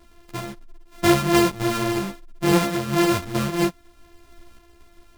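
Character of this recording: a buzz of ramps at a fixed pitch in blocks of 128 samples; random-step tremolo; a shimmering, thickened sound

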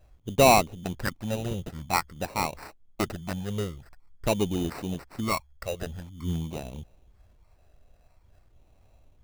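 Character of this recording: phasing stages 8, 0.48 Hz, lowest notch 270–2000 Hz; aliases and images of a low sample rate 3300 Hz, jitter 0%

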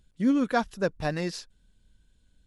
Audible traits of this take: noise floor -66 dBFS; spectral tilt -5.0 dB/oct

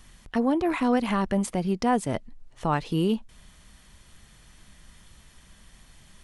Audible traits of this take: noise floor -55 dBFS; spectral tilt -6.0 dB/oct

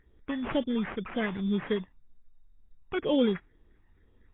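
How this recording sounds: phasing stages 12, 2 Hz, lowest notch 450–1500 Hz; aliases and images of a low sample rate 3700 Hz, jitter 0%; AAC

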